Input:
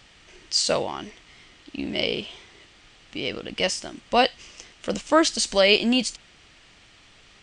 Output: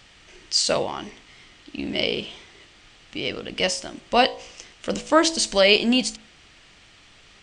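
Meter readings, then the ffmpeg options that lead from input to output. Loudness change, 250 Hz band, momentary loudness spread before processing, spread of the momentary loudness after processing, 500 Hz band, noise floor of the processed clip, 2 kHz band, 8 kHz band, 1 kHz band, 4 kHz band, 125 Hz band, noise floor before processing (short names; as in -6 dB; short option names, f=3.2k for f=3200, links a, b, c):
+1.5 dB, +1.0 dB, 18 LU, 19 LU, +1.0 dB, -52 dBFS, +1.5 dB, +1.5 dB, +1.0 dB, +1.5 dB, +1.0 dB, -54 dBFS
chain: -af "bandreject=f=54.41:t=h:w=4,bandreject=f=108.82:t=h:w=4,bandreject=f=163.23:t=h:w=4,bandreject=f=217.64:t=h:w=4,bandreject=f=272.05:t=h:w=4,bandreject=f=326.46:t=h:w=4,bandreject=f=380.87:t=h:w=4,bandreject=f=435.28:t=h:w=4,bandreject=f=489.69:t=h:w=4,bandreject=f=544.1:t=h:w=4,bandreject=f=598.51:t=h:w=4,bandreject=f=652.92:t=h:w=4,bandreject=f=707.33:t=h:w=4,bandreject=f=761.74:t=h:w=4,bandreject=f=816.15:t=h:w=4,bandreject=f=870.56:t=h:w=4,bandreject=f=924.97:t=h:w=4,bandreject=f=979.38:t=h:w=4,bandreject=f=1.03379k:t=h:w=4,bandreject=f=1.0882k:t=h:w=4,bandreject=f=1.14261k:t=h:w=4,volume=1.5dB"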